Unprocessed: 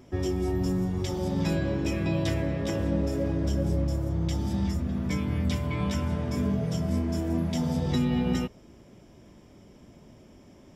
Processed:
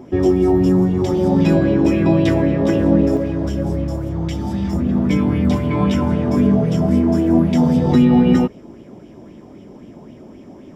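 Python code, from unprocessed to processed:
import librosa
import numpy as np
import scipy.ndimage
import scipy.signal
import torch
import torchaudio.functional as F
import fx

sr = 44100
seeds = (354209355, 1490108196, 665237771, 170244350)

y = fx.peak_eq(x, sr, hz=300.0, db=fx.steps((0.0, 14.0), (3.17, 6.5), (4.73, 14.0)), octaves=2.7)
y = fx.bell_lfo(y, sr, hz=3.8, low_hz=770.0, high_hz=3000.0, db=10)
y = y * librosa.db_to_amplitude(1.5)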